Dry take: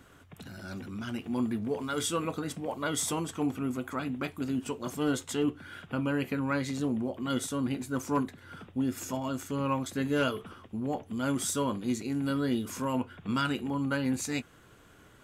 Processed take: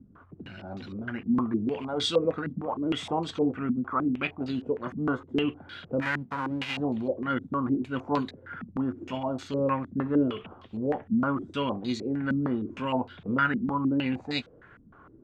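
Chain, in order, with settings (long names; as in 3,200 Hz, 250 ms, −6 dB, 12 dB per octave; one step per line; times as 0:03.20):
0:06.01–0:06.76: spectral envelope flattened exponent 0.1
low-pass on a step sequencer 6.5 Hz 220–4,100 Hz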